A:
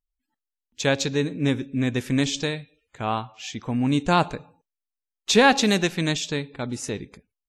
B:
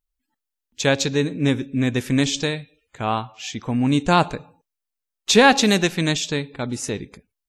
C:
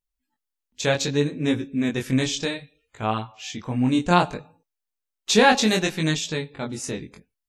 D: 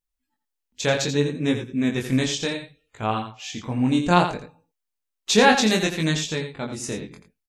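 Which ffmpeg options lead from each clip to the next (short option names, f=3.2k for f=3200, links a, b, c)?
-af "highshelf=f=9.4k:g=3.5,volume=3dB"
-af "flanger=delay=18.5:depth=5.4:speed=0.64"
-af "aecho=1:1:85:0.355"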